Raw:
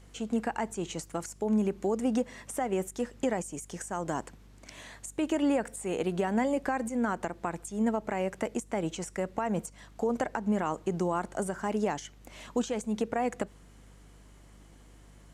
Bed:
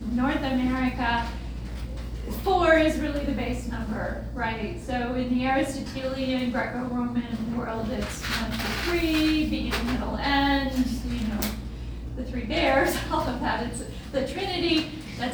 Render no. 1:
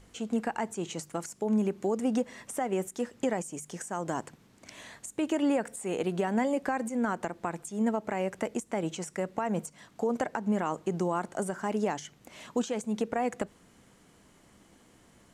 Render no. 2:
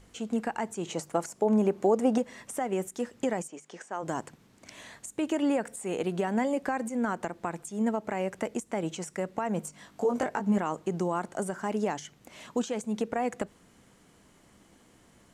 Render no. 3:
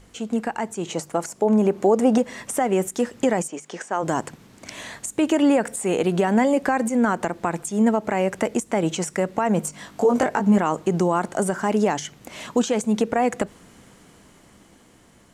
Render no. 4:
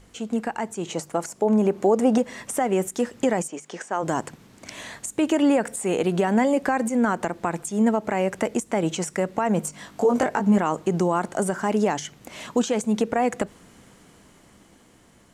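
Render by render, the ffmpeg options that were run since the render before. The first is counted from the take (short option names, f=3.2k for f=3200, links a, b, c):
-af "bandreject=f=50:t=h:w=4,bandreject=f=100:t=h:w=4,bandreject=f=150:t=h:w=4"
-filter_complex "[0:a]asettb=1/sr,asplit=3[a][b][c];[a]atrim=end=0.874[d];[b]atrim=start=0.87:end=2.18,asetpts=PTS-STARTPTS,afade=t=in:d=0.004:c=qsin,afade=t=out:st=1.306:d=0.004:c=qsin,equalizer=f=670:t=o:w=1.9:g=8.5[e];[c]atrim=start=2.176[f];[d][e]acrossfade=d=0.004:c1=hsin:c2=qsin[g];[g][f]acrossfade=d=0.004:c1=qsin:c2=hsin,asplit=3[h][i][j];[h]afade=t=out:st=3.47:d=0.02[k];[i]highpass=340,lowpass=4.3k,afade=t=in:st=3.47:d=0.02,afade=t=out:st=4.02:d=0.02[l];[j]afade=t=in:st=4.02:d=0.02[m];[k][l][m]amix=inputs=3:normalize=0,asettb=1/sr,asplit=3[n][o][p];[n]atrim=end=9.624[q];[o]atrim=start=9.62:end=10.58,asetpts=PTS-STARTPTS,afade=t=in:d=0.004:c=qsin,afade=t=out:st=0.956:d=0.004:c=qsin,asplit=2[r][s];[s]adelay=20,volume=-2.5dB[t];[r][t]amix=inputs=2:normalize=0,atrim=end_sample=42336[u];[p]atrim=start=10.576[v];[q][u]acrossfade=d=0.004:c1=hsin:c2=qsin[w];[w][v]acrossfade=d=0.004:c1=qsin:c2=hsin"
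-filter_complex "[0:a]dynaudnorm=f=390:g=9:m=5.5dB,asplit=2[a][b];[b]alimiter=limit=-19dB:level=0:latency=1:release=59,volume=-1dB[c];[a][c]amix=inputs=2:normalize=0"
-af "volume=-1.5dB"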